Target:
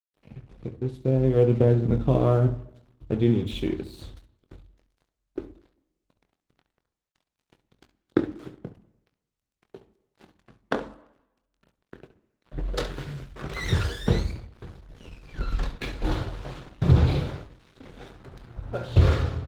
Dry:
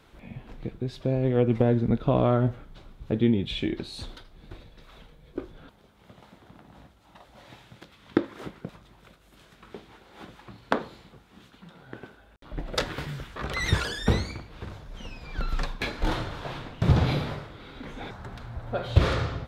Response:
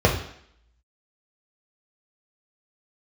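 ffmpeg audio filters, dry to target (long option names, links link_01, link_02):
-filter_complex "[0:a]aeval=exprs='sgn(val(0))*max(abs(val(0))-0.00794,0)':channel_layout=same,aecho=1:1:23|68:0.335|0.237,asplit=2[link_01][link_02];[1:a]atrim=start_sample=2205,asetrate=34839,aresample=44100[link_03];[link_02][link_03]afir=irnorm=-1:irlink=0,volume=-29.5dB[link_04];[link_01][link_04]amix=inputs=2:normalize=0,volume=-2dB" -ar 48000 -c:a libopus -b:a 16k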